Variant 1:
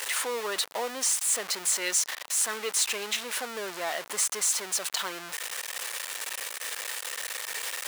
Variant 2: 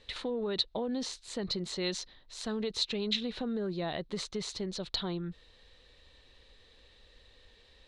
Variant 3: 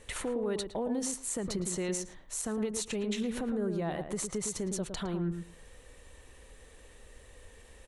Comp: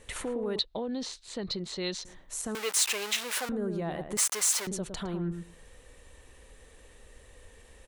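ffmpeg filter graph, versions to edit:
-filter_complex "[0:a]asplit=2[a][b];[2:a]asplit=4[c][d][e][f];[c]atrim=end=0.592[g];[1:a]atrim=start=0.588:end=2.052[h];[d]atrim=start=2.048:end=2.552[i];[a]atrim=start=2.548:end=3.492[j];[e]atrim=start=3.488:end=4.172[k];[b]atrim=start=4.168:end=4.672[l];[f]atrim=start=4.668[m];[g][h]acrossfade=d=0.004:c1=hsin:c2=hsin[n];[n][i]acrossfade=d=0.004:c1=hsin:c2=hsin[o];[o][j]acrossfade=d=0.004:c1=hsin:c2=hsin[p];[p][k]acrossfade=d=0.004:c1=hsin:c2=hsin[q];[q][l]acrossfade=d=0.004:c1=hsin:c2=hsin[r];[r][m]acrossfade=d=0.004:c1=hsin:c2=hsin"

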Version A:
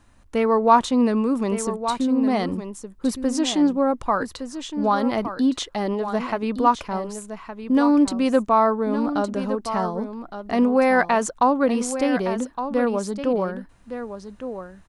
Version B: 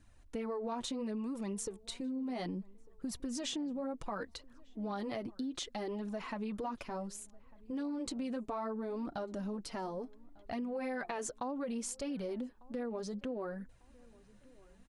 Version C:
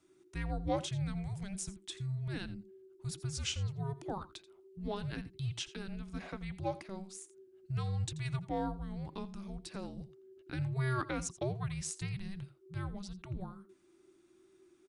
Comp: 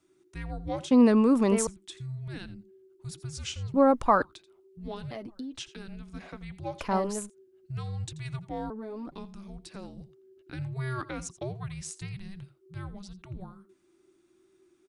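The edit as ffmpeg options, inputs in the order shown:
-filter_complex "[0:a]asplit=3[a][b][c];[1:a]asplit=2[d][e];[2:a]asplit=6[f][g][h][i][j][k];[f]atrim=end=0.912[l];[a]atrim=start=0.908:end=1.672[m];[g]atrim=start=1.668:end=3.742[n];[b]atrim=start=3.738:end=4.222[o];[h]atrim=start=4.218:end=5.112[p];[d]atrim=start=5.108:end=5.582[q];[i]atrim=start=5.578:end=6.82[r];[c]atrim=start=6.78:end=7.3[s];[j]atrim=start=7.26:end=8.702[t];[e]atrim=start=8.698:end=9.122[u];[k]atrim=start=9.118[v];[l][m]acrossfade=d=0.004:c1=hsin:c2=hsin[w];[w][n]acrossfade=d=0.004:c1=hsin:c2=hsin[x];[x][o]acrossfade=d=0.004:c1=hsin:c2=hsin[y];[y][p]acrossfade=d=0.004:c1=hsin:c2=hsin[z];[z][q]acrossfade=d=0.004:c1=hsin:c2=hsin[aa];[aa][r]acrossfade=d=0.004:c1=hsin:c2=hsin[ab];[ab][s]acrossfade=d=0.04:c1=tri:c2=tri[ac];[ac][t]acrossfade=d=0.04:c1=tri:c2=tri[ad];[ad][u]acrossfade=d=0.004:c1=hsin:c2=hsin[ae];[ae][v]acrossfade=d=0.004:c1=hsin:c2=hsin"

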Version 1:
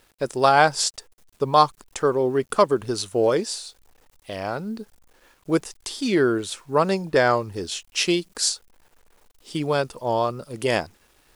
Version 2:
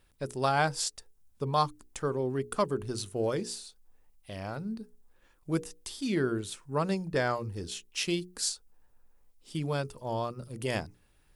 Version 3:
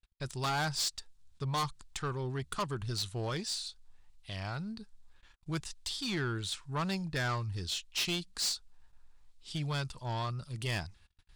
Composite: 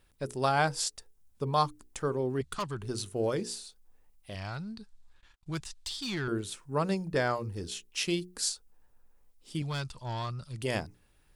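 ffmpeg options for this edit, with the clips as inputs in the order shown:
-filter_complex "[2:a]asplit=3[a][b][c];[1:a]asplit=4[d][e][f][g];[d]atrim=end=2.412[h];[a]atrim=start=2.408:end=2.822[i];[e]atrim=start=2.818:end=4.352[j];[b]atrim=start=4.348:end=6.282[k];[f]atrim=start=6.278:end=9.622[l];[c]atrim=start=9.618:end=10.632[m];[g]atrim=start=10.628[n];[h][i]acrossfade=d=0.004:c1=hsin:c2=hsin[o];[o][j]acrossfade=d=0.004:c1=hsin:c2=hsin[p];[p][k]acrossfade=d=0.004:c1=hsin:c2=hsin[q];[q][l]acrossfade=d=0.004:c1=hsin:c2=hsin[r];[r][m]acrossfade=d=0.004:c1=hsin:c2=hsin[s];[s][n]acrossfade=d=0.004:c1=hsin:c2=hsin"

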